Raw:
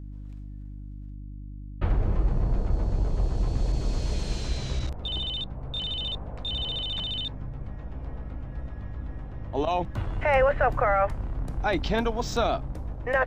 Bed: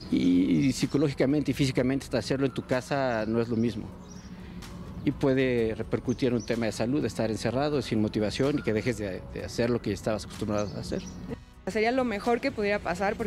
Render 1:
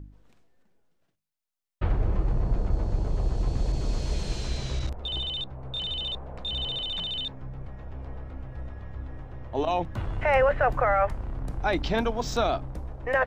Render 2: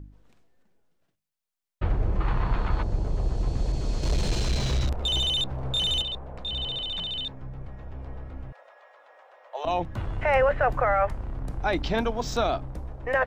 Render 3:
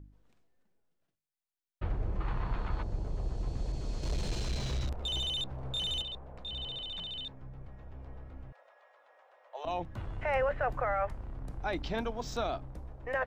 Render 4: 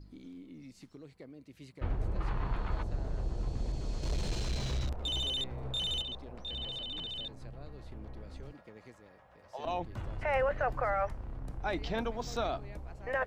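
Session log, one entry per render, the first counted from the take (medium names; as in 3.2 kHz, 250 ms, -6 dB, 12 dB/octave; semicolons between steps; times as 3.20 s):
de-hum 50 Hz, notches 6
2.20–2.83 s: high-order bell 1.9 kHz +14 dB 2.5 oct; 4.03–6.02 s: waveshaping leveller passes 2; 8.52–9.65 s: elliptic high-pass 550 Hz, stop band 80 dB
trim -8.5 dB
add bed -26 dB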